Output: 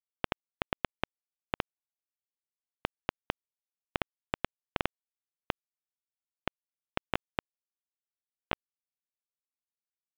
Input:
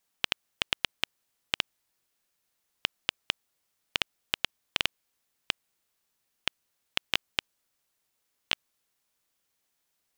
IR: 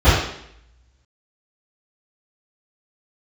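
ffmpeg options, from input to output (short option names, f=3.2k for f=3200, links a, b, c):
-af "lowpass=1k,aresample=16000,aeval=exprs='sgn(val(0))*max(abs(val(0))-0.00224,0)':c=same,aresample=44100,volume=7.5dB"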